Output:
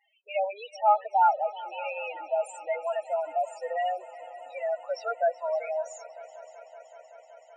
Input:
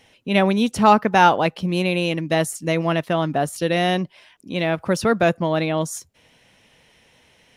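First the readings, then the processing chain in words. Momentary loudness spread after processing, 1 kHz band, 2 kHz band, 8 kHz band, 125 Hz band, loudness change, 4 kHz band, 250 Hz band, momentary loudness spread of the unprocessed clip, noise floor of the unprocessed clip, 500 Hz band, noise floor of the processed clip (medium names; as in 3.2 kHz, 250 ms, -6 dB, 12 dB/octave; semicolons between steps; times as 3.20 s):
21 LU, -6.0 dB, -15.0 dB, -17.0 dB, under -40 dB, -9.0 dB, -20.0 dB, under -40 dB, 9 LU, -57 dBFS, -7.5 dB, -56 dBFS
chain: Chebyshev band-pass 600–8200 Hz, order 3; loudest bins only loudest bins 4; multi-head delay 189 ms, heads second and third, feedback 74%, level -19 dB; trim -4 dB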